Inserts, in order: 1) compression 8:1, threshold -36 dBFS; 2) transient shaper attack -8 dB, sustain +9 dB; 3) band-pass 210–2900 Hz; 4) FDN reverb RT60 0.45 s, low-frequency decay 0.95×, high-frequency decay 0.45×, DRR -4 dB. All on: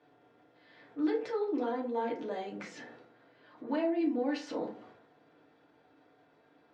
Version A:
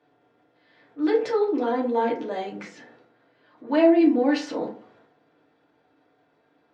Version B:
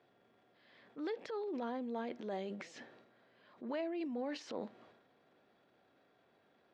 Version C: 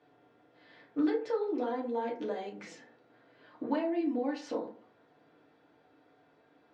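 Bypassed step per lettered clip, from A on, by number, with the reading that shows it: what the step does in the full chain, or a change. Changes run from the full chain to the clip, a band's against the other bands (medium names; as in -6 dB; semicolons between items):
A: 1, crest factor change +2.0 dB; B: 4, momentary loudness spread change -6 LU; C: 2, crest factor change +1.5 dB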